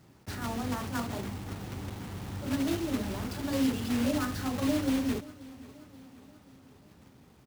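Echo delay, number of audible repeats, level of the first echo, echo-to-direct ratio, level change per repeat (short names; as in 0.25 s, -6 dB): 0.532 s, 3, -20.0 dB, -18.5 dB, -5.0 dB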